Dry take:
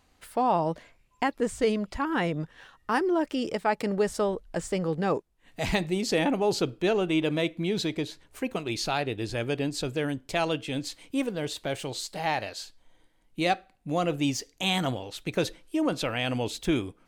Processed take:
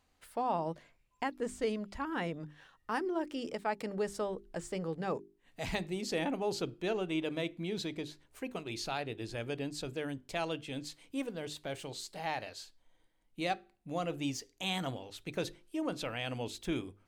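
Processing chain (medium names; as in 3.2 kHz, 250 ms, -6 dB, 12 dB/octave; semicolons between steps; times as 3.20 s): hum notches 50/100/150/200/250/300/350/400 Hz; trim -8.5 dB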